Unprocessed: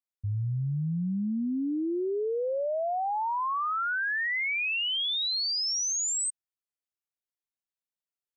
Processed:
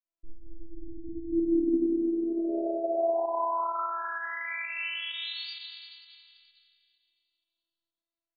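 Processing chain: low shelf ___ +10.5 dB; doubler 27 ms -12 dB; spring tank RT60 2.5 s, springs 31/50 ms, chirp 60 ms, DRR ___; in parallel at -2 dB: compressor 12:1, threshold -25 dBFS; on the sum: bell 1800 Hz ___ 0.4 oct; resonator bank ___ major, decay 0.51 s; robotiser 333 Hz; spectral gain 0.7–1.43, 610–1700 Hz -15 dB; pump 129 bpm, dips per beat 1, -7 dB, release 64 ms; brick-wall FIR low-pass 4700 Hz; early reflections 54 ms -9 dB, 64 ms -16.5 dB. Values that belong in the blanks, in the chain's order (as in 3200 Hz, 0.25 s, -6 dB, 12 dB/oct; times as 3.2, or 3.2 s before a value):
440 Hz, -9 dB, -4.5 dB, D2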